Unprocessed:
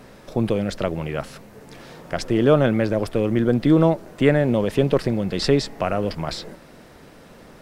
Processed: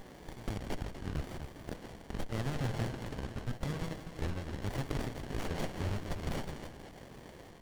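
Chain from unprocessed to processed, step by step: trilling pitch shifter -8.5 st, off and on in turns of 0.577 s; steep high-pass 1200 Hz 72 dB/oct; in parallel at -1 dB: compressor, threshold -46 dBFS, peak gain reduction 19 dB; on the sum: one-sided clip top -25 dBFS; on a send: split-band echo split 2800 Hz, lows 0.246 s, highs 0.161 s, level -8 dB; on the sum: running maximum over 33 samples; gain +2 dB

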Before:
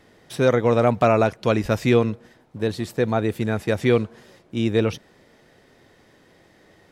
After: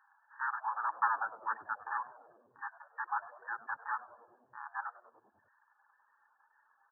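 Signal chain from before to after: cycle switcher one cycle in 3, inverted; FFT band-pass 800–1800 Hz; reverb removal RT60 1 s; on a send: frequency-shifting echo 98 ms, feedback 63%, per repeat -120 Hz, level -18 dB; on the sum: wow and flutter 40 cents; gain -5.5 dB

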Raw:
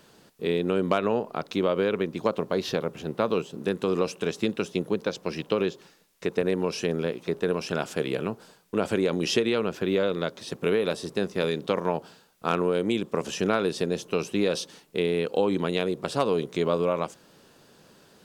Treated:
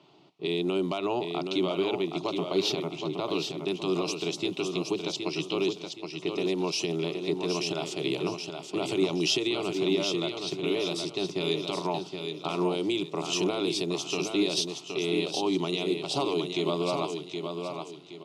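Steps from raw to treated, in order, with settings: weighting filter D; low-pass opened by the level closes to 2100 Hz, open at -21.5 dBFS; HPF 92 Hz; tilt shelf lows +3.5 dB, about 1300 Hz; limiter -13 dBFS, peak gain reduction 8.5 dB; fixed phaser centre 330 Hz, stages 8; feedback echo 0.77 s, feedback 34%, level -6 dB

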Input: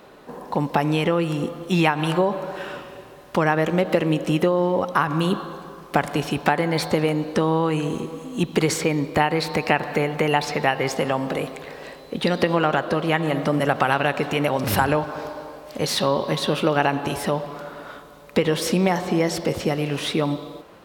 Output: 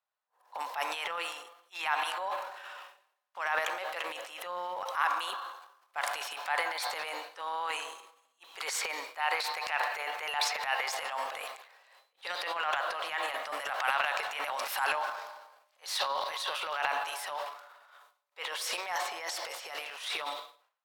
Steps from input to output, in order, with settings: HPF 790 Hz 24 dB/oct; transient shaper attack -10 dB, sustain +10 dB; expander -32 dBFS; gain -6.5 dB

